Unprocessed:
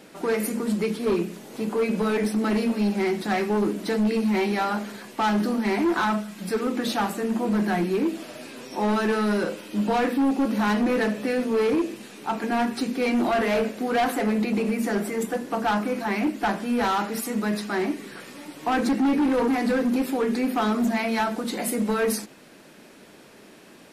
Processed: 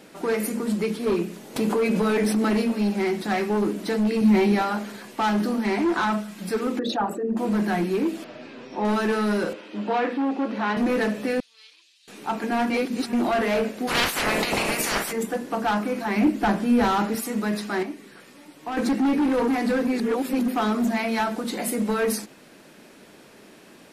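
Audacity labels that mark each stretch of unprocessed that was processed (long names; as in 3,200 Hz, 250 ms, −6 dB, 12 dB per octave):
1.560000	2.620000	envelope flattener amount 70%
4.210000	4.620000	low-shelf EQ 330 Hz +9 dB
5.660000	6.120000	low-pass filter 10,000 Hz
6.790000	7.370000	spectral envelope exaggerated exponent 2
8.240000	8.850000	high-frequency loss of the air 190 metres
9.530000	10.770000	band-pass filter 280–3,500 Hz
11.400000	12.080000	four-pole ladder band-pass 4,500 Hz, resonance 45%
12.700000	13.130000	reverse
13.870000	15.110000	ceiling on every frequency bin ceiling under each frame's peak by 28 dB
16.160000	17.150000	low-shelf EQ 350 Hz +8.5 dB
17.830000	18.770000	clip gain −7 dB
19.870000	20.480000	reverse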